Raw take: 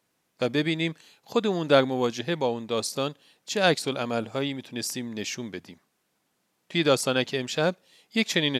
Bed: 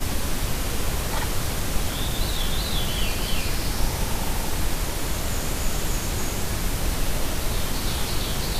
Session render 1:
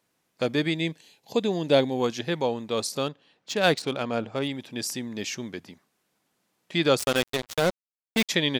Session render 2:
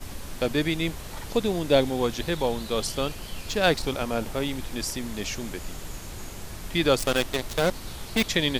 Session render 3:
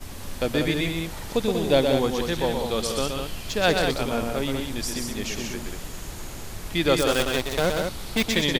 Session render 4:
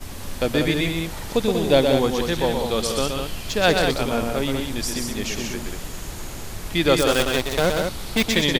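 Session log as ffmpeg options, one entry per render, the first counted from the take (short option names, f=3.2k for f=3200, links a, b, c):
-filter_complex "[0:a]asettb=1/sr,asplit=3[a][b][c];[a]atrim=end=0.744[d];[b]atrim=start=0.74:end=2,asetpts=PTS-STARTPTS,afade=t=in:d=0.004:c=qsin,afade=t=out:st=1.256:d=0.004:c=qsin,equalizer=f=1.3k:w=2.8:g=-13[e];[c]atrim=start=1.996[f];[d][e]acrossfade=d=0.004:c1=hsin:c2=qsin[g];[g][f]acrossfade=d=0.004:c1=qsin:c2=hsin,asettb=1/sr,asplit=3[h][i][j];[h]atrim=end=3.064[k];[i]atrim=start=3.06:end=4.48,asetpts=PTS-STARTPTS,afade=t=in:d=0.004:c=qsin,afade=t=out:st=1.416:d=0.004:c=qsin,adynamicsmooth=sensitivity=5.5:basefreq=4.1k[l];[j]atrim=start=4.476[m];[k][l]acrossfade=d=0.004:c1=hsin:c2=qsin[n];[n][m]acrossfade=d=0.004:c1=qsin:c2=hsin,asettb=1/sr,asplit=3[o][p][q];[o]atrim=end=6.994[r];[p]atrim=start=6.99:end=8.29,asetpts=PTS-STARTPTS,afade=t=in:d=0.004:c=qsin,afade=t=out:st=1.296:d=0.004:c=qsin,acrusher=bits=3:mix=0:aa=0.5[s];[q]atrim=start=8.286[t];[r][s]acrossfade=d=0.004:c1=hsin:c2=qsin[u];[u][t]acrossfade=d=0.004:c1=qsin:c2=hsin"
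-filter_complex "[1:a]volume=-12dB[a];[0:a][a]amix=inputs=2:normalize=0"
-af "aecho=1:1:122.4|189.5:0.562|0.501"
-af "volume=3dB"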